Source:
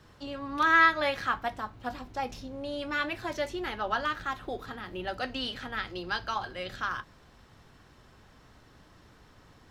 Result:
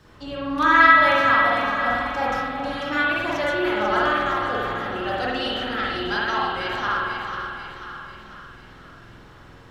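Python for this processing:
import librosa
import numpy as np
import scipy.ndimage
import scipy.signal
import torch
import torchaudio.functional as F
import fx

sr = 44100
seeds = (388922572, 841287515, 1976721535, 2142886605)

p1 = x + fx.echo_split(x, sr, split_hz=1200.0, low_ms=368, high_ms=493, feedback_pct=52, wet_db=-6.5, dry=0)
p2 = fx.rev_spring(p1, sr, rt60_s=1.1, pass_ms=(47,), chirp_ms=40, drr_db=-4.5)
y = p2 * librosa.db_to_amplitude(3.0)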